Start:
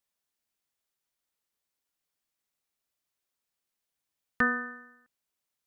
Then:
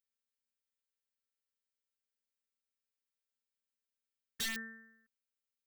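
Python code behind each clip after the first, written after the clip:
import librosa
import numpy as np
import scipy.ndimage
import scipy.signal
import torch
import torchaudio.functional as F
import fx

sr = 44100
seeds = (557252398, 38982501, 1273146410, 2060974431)

y = fx.robotise(x, sr, hz=225.0)
y = (np.mod(10.0 ** (24.5 / 20.0) * y + 1.0, 2.0) - 1.0) / 10.0 ** (24.5 / 20.0)
y = fx.band_shelf(y, sr, hz=730.0, db=-11.5, octaves=1.3)
y = y * librosa.db_to_amplitude(-6.0)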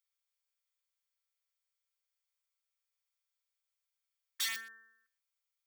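y = scipy.signal.sosfilt(scipy.signal.butter(2, 970.0, 'highpass', fs=sr, output='sos'), x)
y = y + 0.34 * np.pad(y, (int(0.9 * sr / 1000.0), 0))[:len(y)]
y = y + 10.0 ** (-19.5 / 20.0) * np.pad(y, (int(122 * sr / 1000.0), 0))[:len(y)]
y = y * librosa.db_to_amplitude(2.5)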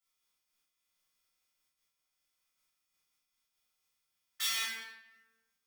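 y = fx.doubler(x, sr, ms=38.0, db=-5.0)
y = fx.room_shoebox(y, sr, seeds[0], volume_m3=620.0, walls='mixed', distance_m=6.7)
y = fx.am_noise(y, sr, seeds[1], hz=5.7, depth_pct=60)
y = y * librosa.db_to_amplitude(-2.5)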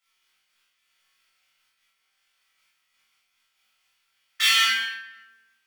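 y = fx.peak_eq(x, sr, hz=2300.0, db=14.5, octaves=2.4)
y = fx.room_flutter(y, sr, wall_m=3.7, rt60_s=0.37)
y = y * librosa.db_to_amplitude(1.5)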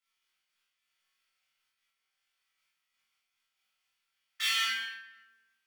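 y = fx.rider(x, sr, range_db=10, speed_s=0.5)
y = y * librosa.db_to_amplitude(-7.0)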